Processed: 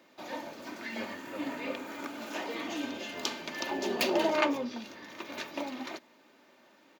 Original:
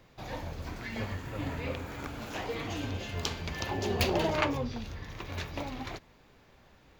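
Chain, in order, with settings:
high-pass filter 210 Hz 24 dB per octave
comb filter 3.3 ms, depth 45%

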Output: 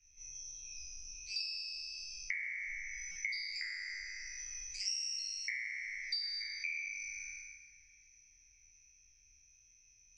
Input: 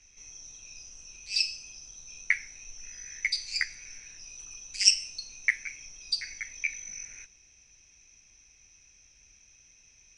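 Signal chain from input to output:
peak hold with a decay on every bin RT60 1.93 s
downward compressor 6 to 1, threshold −38 dBFS, peak gain reduction 23.5 dB
delay with a low-pass on its return 635 ms, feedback 50%, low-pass 2,400 Hz, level −14.5 dB
buffer that repeats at 0:03.11, samples 256, times 7
every bin expanded away from the loudest bin 1.5 to 1

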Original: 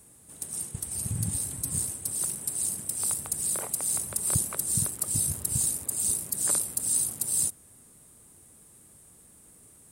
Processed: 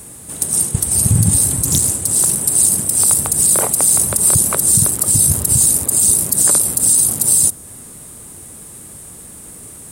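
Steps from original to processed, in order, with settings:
dynamic equaliser 2,300 Hz, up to −4 dB, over −50 dBFS, Q 0.81
boost into a limiter +20 dB
0:01.65–0:02.33: highs frequency-modulated by the lows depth 0.75 ms
level −1 dB

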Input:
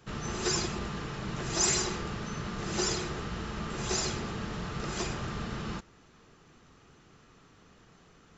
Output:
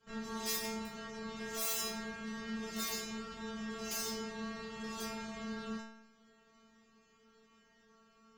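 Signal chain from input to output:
wrap-around overflow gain 23 dB
harmonic generator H 6 −19 dB, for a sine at −23 dBFS
stiff-string resonator 220 Hz, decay 0.84 s, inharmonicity 0.002
level +10.5 dB

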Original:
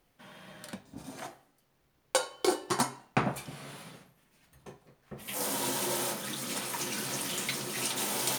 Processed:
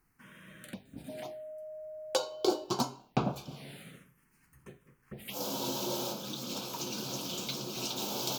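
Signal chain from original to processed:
phaser swept by the level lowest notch 580 Hz, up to 1,900 Hz, full sweep at −36 dBFS
0:01.08–0:02.63: steady tone 620 Hz −41 dBFS

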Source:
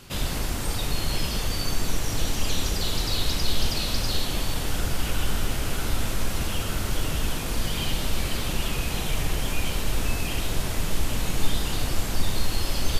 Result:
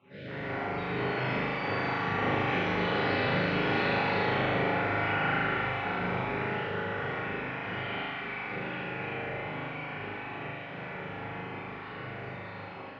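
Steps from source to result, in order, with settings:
time-frequency cells dropped at random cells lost 29%
source passing by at 0:03.45, 5 m/s, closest 7 metres
low-shelf EQ 340 Hz −8.5 dB
flutter between parallel walls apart 6.7 metres, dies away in 1.2 s
convolution reverb RT60 1.2 s, pre-delay 11 ms, DRR −9.5 dB
automatic gain control gain up to 4.5 dB
elliptic band-pass filter 110–2,200 Hz, stop band 60 dB
level −5 dB

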